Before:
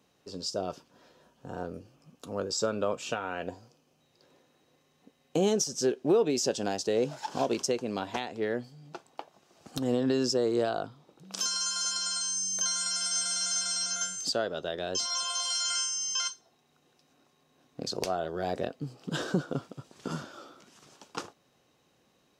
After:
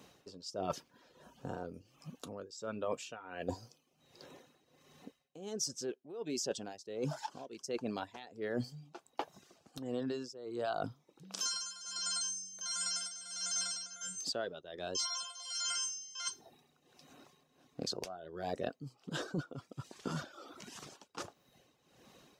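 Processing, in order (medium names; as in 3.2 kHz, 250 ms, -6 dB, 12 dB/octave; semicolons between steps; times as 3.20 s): reverb removal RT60 0.61 s; reverse; compression 16:1, threshold -42 dBFS, peak gain reduction 22.5 dB; reverse; tremolo 1.4 Hz, depth 79%; trim +9.5 dB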